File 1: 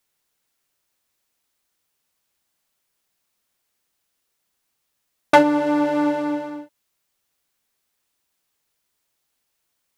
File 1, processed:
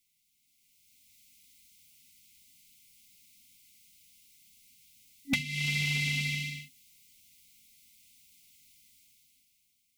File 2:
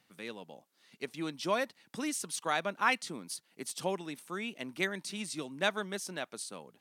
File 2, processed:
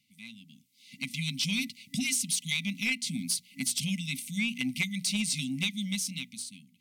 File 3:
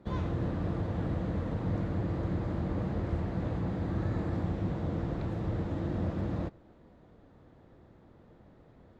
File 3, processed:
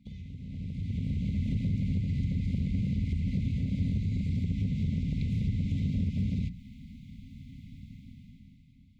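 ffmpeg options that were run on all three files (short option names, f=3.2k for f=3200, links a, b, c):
-af "afftfilt=real='re*(1-between(b*sr/4096,270,2000))':imag='im*(1-between(b*sr/4096,270,2000))':win_size=4096:overlap=0.75,acompressor=threshold=-38dB:ratio=12,asoftclip=type=tanh:threshold=-32.5dB,dynaudnorm=f=140:g=13:m=14dB,bandreject=f=60:t=h:w=6,bandreject=f=120:t=h:w=6,bandreject=f=180:t=h:w=6,bandreject=f=240:t=h:w=6"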